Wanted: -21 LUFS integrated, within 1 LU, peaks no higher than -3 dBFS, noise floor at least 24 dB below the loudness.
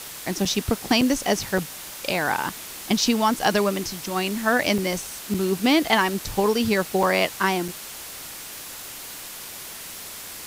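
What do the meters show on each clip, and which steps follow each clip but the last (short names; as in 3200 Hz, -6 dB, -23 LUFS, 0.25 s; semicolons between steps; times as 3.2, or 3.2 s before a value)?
dropouts 7; longest dropout 4.3 ms; noise floor -38 dBFS; noise floor target -47 dBFS; loudness -23.0 LUFS; peak -5.5 dBFS; loudness target -21.0 LUFS
-> interpolate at 0.45/1.01/1.58/4.78/5.34/7.03/7.68, 4.3 ms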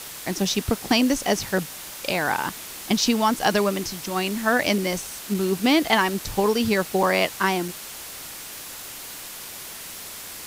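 dropouts 0; noise floor -38 dBFS; noise floor target -47 dBFS
-> noise print and reduce 9 dB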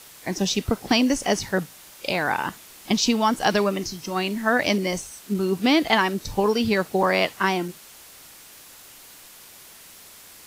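noise floor -47 dBFS; loudness -23.0 LUFS; peak -5.5 dBFS; loudness target -21.0 LUFS
-> gain +2 dB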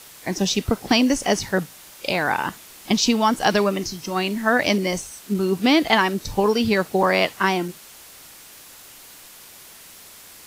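loudness -21.0 LUFS; peak -3.5 dBFS; noise floor -45 dBFS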